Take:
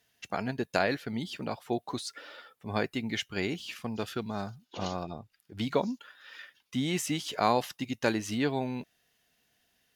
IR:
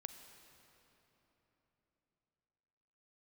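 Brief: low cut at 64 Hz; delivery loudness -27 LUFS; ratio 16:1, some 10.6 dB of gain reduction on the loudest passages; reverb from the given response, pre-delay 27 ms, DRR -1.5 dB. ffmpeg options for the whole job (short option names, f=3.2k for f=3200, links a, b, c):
-filter_complex "[0:a]highpass=64,acompressor=threshold=-30dB:ratio=16,asplit=2[a][b];[1:a]atrim=start_sample=2205,adelay=27[c];[b][c]afir=irnorm=-1:irlink=0,volume=5.5dB[d];[a][d]amix=inputs=2:normalize=0,volume=7dB"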